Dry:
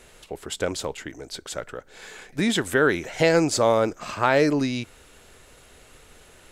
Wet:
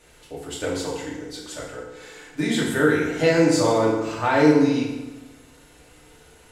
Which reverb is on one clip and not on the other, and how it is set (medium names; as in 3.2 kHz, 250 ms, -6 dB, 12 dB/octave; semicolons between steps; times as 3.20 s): FDN reverb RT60 1.1 s, low-frequency decay 1.2×, high-frequency decay 0.75×, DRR -6.5 dB; trim -7.5 dB